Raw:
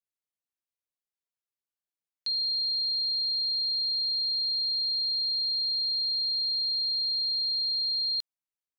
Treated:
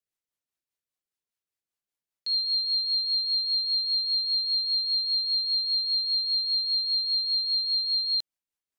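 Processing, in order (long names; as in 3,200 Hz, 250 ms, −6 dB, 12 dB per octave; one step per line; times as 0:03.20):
rotating-speaker cabinet horn 5 Hz
level +4.5 dB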